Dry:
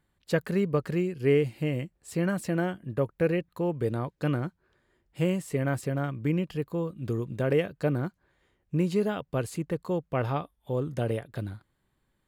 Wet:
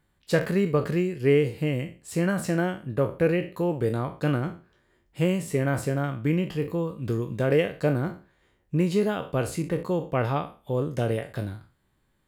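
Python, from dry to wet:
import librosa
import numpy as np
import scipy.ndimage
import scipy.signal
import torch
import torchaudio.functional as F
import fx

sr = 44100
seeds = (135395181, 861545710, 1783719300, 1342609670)

y = fx.spec_trails(x, sr, decay_s=0.35)
y = y * librosa.db_to_amplitude(2.5)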